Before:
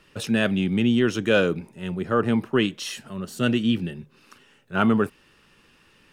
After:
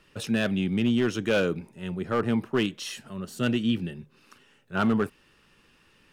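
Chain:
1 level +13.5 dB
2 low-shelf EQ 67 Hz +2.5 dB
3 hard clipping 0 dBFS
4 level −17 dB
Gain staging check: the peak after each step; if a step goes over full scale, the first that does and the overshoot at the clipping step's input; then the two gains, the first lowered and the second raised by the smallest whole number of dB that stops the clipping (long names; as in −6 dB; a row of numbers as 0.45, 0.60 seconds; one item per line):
+6.5, +6.5, 0.0, −17.0 dBFS
step 1, 6.5 dB
step 1 +6.5 dB, step 4 −10 dB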